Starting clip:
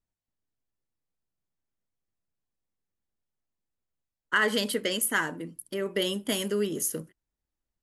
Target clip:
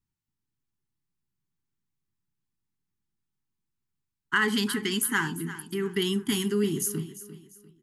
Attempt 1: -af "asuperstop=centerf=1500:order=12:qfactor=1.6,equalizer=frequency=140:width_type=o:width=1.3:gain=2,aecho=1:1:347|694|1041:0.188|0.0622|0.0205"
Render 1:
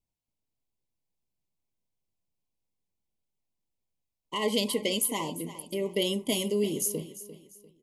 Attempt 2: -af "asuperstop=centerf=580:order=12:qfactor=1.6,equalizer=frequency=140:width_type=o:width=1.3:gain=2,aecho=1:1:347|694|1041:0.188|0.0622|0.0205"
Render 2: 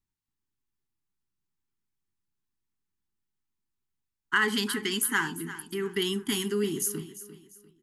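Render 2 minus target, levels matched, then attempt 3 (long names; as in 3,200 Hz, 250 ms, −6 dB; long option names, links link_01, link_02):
125 Hz band −4.5 dB
-af "asuperstop=centerf=580:order=12:qfactor=1.6,equalizer=frequency=140:width_type=o:width=1.3:gain=9.5,aecho=1:1:347|694|1041:0.188|0.0622|0.0205"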